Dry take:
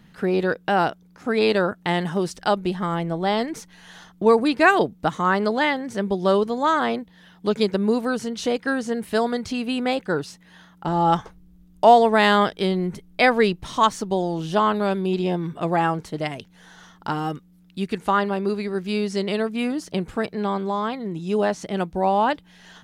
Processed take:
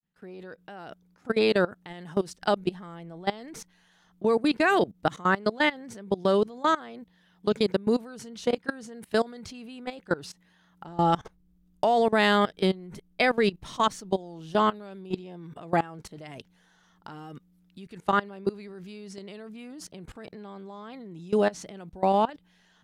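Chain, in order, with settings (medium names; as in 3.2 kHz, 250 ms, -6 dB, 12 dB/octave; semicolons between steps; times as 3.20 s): fade-in on the opening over 1.01 s; dynamic bell 960 Hz, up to -4 dB, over -31 dBFS, Q 2.3; level held to a coarse grid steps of 21 dB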